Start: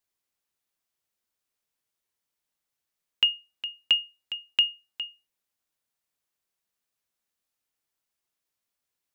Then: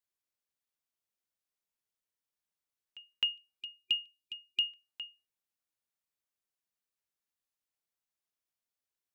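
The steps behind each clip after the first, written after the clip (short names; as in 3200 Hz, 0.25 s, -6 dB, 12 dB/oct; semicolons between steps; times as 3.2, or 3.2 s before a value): spectral gain 3.6–4.65, 370–2400 Hz -27 dB; pre-echo 0.261 s -21 dB; gain -8.5 dB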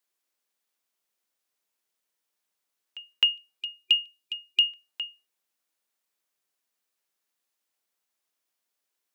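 HPF 240 Hz; gain +9 dB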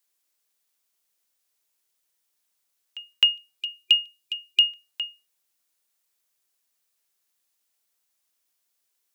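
high shelf 3500 Hz +8 dB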